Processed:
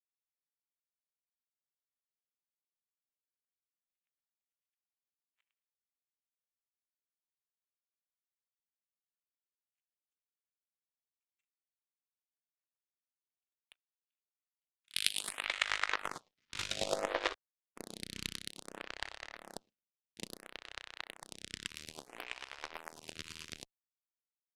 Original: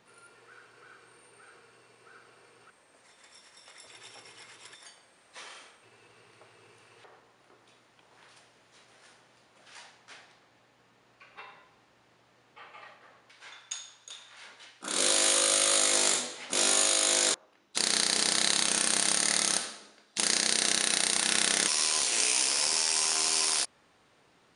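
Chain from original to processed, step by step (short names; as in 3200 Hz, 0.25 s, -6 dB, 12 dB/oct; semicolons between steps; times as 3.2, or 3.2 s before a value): Wiener smoothing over 9 samples; LPF 3500 Hz 24 dB/oct; low shelf 120 Hz +11.5 dB; limiter -22.5 dBFS, peak gain reduction 9.5 dB; high-pass sweep 2700 Hz -> 67 Hz, 15.27–19.07; power-law curve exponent 3; chopper 9.1 Hz, depth 65%, duty 20%; photocell phaser 0.59 Hz; gain +17.5 dB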